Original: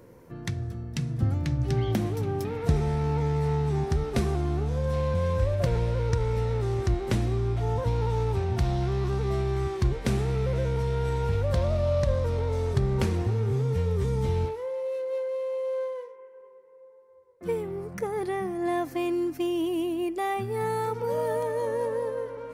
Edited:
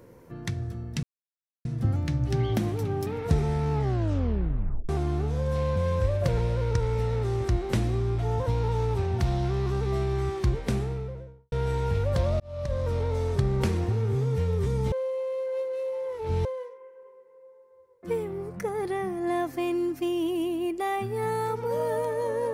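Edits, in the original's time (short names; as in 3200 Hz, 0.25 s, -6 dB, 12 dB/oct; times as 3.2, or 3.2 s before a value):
1.03 insert silence 0.62 s
3.12 tape stop 1.15 s
9.86–10.9 studio fade out
11.78–12.31 fade in linear
14.3–15.83 reverse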